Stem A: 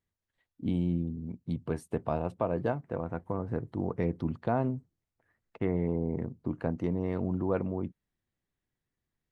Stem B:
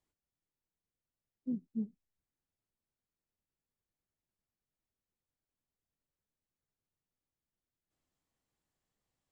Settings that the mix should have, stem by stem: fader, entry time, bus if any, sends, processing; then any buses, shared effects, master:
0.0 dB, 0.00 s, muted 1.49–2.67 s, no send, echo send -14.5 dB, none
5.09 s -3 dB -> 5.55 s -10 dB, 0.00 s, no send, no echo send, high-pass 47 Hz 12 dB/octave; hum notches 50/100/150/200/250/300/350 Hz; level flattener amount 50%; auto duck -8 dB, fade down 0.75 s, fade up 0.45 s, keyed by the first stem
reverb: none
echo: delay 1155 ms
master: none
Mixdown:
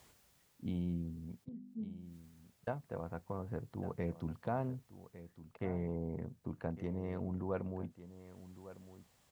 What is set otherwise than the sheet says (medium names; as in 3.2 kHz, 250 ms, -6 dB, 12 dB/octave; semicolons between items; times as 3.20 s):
stem A 0.0 dB -> -7.0 dB; master: extra peaking EQ 310 Hz -6 dB 0.54 oct